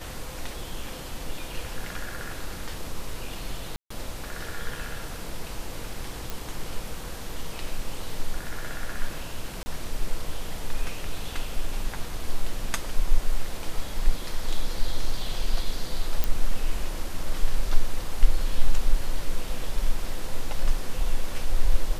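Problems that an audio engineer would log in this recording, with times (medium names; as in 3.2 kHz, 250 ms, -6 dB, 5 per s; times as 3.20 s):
3.76–3.90 s: dropout 144 ms
6.30 s: pop
9.63–9.66 s: dropout 30 ms
16.24 s: pop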